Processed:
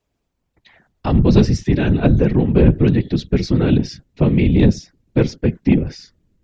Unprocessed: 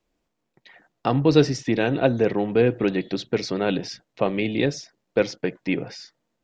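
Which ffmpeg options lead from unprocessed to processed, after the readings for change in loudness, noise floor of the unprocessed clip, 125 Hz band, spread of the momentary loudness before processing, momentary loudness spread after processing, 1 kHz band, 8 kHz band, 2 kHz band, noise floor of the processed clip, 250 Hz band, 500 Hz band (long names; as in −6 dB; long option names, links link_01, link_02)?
+7.0 dB, −78 dBFS, +12.5 dB, 10 LU, 6 LU, −1.0 dB, can't be measured, −0.5 dB, −73 dBFS, +8.5 dB, +1.0 dB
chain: -af "afftfilt=real='hypot(re,im)*cos(2*PI*random(0))':imag='hypot(re,im)*sin(2*PI*random(1))':win_size=512:overlap=0.75,asubboost=boost=9.5:cutoff=240,acontrast=81"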